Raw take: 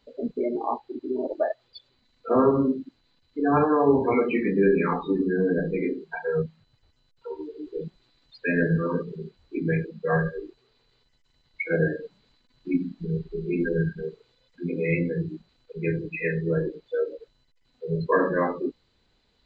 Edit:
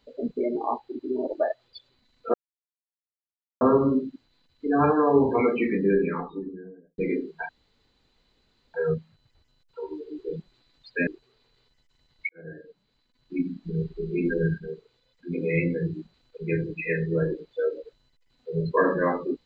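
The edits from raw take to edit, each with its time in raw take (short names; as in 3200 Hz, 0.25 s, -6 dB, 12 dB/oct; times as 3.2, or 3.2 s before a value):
2.34 insert silence 1.27 s
4.24–5.71 studio fade out
6.22 insert room tone 1.25 s
8.55–10.42 cut
11.64–13.16 fade in
13.94–14.67 gain -3 dB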